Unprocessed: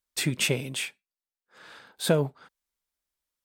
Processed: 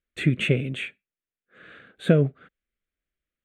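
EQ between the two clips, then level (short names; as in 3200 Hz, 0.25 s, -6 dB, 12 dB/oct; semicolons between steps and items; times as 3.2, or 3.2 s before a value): tape spacing loss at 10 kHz 24 dB; fixed phaser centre 2200 Hz, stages 4; +8.0 dB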